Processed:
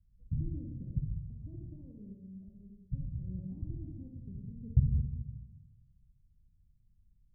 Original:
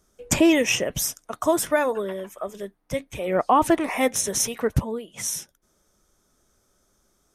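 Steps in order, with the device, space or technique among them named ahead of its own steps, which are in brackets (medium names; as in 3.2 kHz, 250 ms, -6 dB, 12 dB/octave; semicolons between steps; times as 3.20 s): club heard from the street (peak limiter -13.5 dBFS, peak gain reduction 6.5 dB; low-pass 130 Hz 24 dB/octave; reverberation RT60 1.0 s, pre-delay 41 ms, DRR 0.5 dB); trim +2.5 dB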